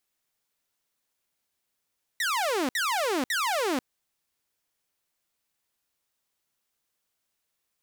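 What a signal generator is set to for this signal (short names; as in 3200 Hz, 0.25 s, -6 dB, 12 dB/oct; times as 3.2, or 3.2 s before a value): burst of laser zaps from 2000 Hz, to 240 Hz, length 0.49 s saw, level -22 dB, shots 3, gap 0.06 s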